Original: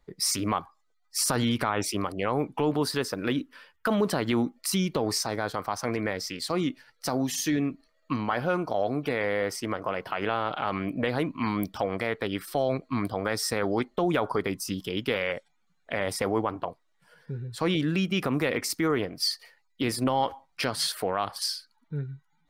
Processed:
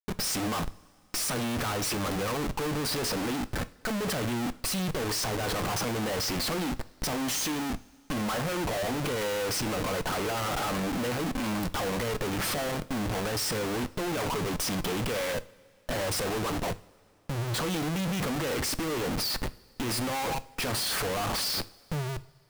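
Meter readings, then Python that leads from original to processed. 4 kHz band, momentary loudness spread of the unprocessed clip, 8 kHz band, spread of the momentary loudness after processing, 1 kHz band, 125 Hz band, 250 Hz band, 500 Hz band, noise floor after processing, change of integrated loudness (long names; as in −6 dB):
+0.5 dB, 6 LU, +1.0 dB, 6 LU, −2.0 dB, 0.0 dB, −3.0 dB, −3.0 dB, −59 dBFS, −1.5 dB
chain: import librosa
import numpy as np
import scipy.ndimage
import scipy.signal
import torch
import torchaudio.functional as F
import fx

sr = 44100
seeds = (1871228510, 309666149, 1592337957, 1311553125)

y = fx.leveller(x, sr, passes=2)
y = fx.schmitt(y, sr, flips_db=-39.0)
y = fx.rev_double_slope(y, sr, seeds[0], early_s=0.39, late_s=3.0, knee_db=-19, drr_db=13.0)
y = y * 10.0 ** (-6.5 / 20.0)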